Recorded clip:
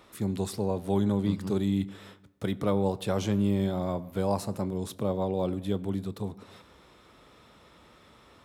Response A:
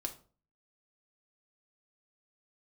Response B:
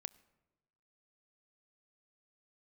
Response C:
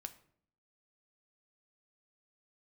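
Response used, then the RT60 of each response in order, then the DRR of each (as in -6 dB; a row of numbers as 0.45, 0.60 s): B; 0.40, 1.1, 0.60 s; 2.5, 17.0, 7.5 dB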